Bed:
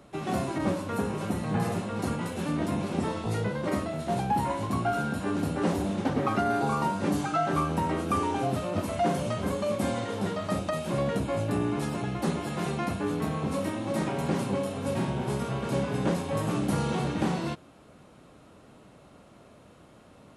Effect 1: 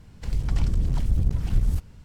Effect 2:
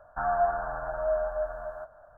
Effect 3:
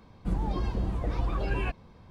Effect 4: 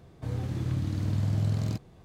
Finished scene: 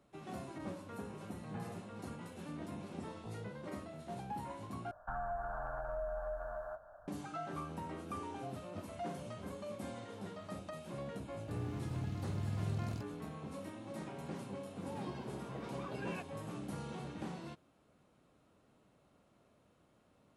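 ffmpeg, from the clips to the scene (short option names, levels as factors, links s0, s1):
-filter_complex "[0:a]volume=0.158[s0];[2:a]acrossover=split=200|3000[s1][s2][s3];[s2]acompressor=threshold=0.0178:ratio=6:attack=3.2:release=140:knee=2.83:detection=peak[s4];[s1][s4][s3]amix=inputs=3:normalize=0[s5];[3:a]highpass=f=190:w=0.5412,highpass=f=190:w=1.3066[s6];[s0]asplit=2[s7][s8];[s7]atrim=end=4.914[s9];[s5]atrim=end=2.17,asetpts=PTS-STARTPTS,volume=0.668[s10];[s8]atrim=start=7.076[s11];[4:a]atrim=end=2.04,asetpts=PTS-STARTPTS,volume=0.282,afade=t=in:d=0.004:c=hsin,afade=t=out:st=2.036:d=0.004:c=hsin,adelay=11250[s12];[s6]atrim=end=2.1,asetpts=PTS-STARTPTS,volume=0.299,afade=t=in:d=0.004:c=hsin,afade=t=out:st=2.096:d=0.004:c=hsin,adelay=14510[s13];[s9][s10]acrossfade=d=0.004:c1=hsin:c2=hsin[s14];[s14][s11]acrossfade=d=0.004:c1=hsin:c2=hsin[s15];[s15][s12][s13]amix=inputs=3:normalize=0"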